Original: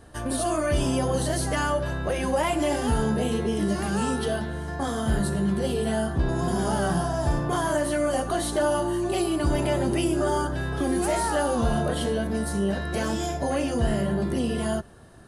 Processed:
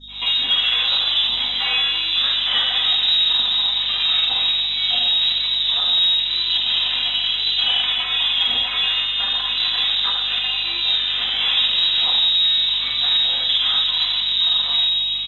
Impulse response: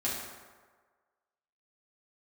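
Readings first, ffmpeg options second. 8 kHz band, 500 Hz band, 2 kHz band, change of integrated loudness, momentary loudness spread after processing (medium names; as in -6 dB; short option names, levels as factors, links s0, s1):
under -15 dB, under -15 dB, +7.5 dB, +9.5 dB, 4 LU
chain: -filter_complex "[1:a]atrim=start_sample=2205[s0];[0:a][s0]afir=irnorm=-1:irlink=0,asoftclip=type=tanh:threshold=0.106,alimiter=level_in=1.26:limit=0.0631:level=0:latency=1,volume=0.794,adynamicequalizer=threshold=0.00708:dfrequency=1900:dqfactor=0.71:tfrequency=1900:tqfactor=0.71:attack=5:release=100:ratio=0.375:range=2:mode=cutabove:tftype=bell,acontrast=74,lowshelf=f=360:g=-8.5,bandreject=f=1700:w=6.8,acrossover=split=150|560[s1][s2][s3];[s3]adelay=70[s4];[s1]adelay=100[s5];[s5][s2][s4]amix=inputs=3:normalize=0,lowpass=f=3400:t=q:w=0.5098,lowpass=f=3400:t=q:w=0.6013,lowpass=f=3400:t=q:w=0.9,lowpass=f=3400:t=q:w=2.563,afreqshift=-4000,aeval=exprs='val(0)+0.00158*(sin(2*PI*50*n/s)+sin(2*PI*2*50*n/s)/2+sin(2*PI*3*50*n/s)/3+sin(2*PI*4*50*n/s)/4+sin(2*PI*5*50*n/s)/5)':c=same,aecho=1:1:4:0.37,volume=2.82" -ar 16000 -c:a pcm_mulaw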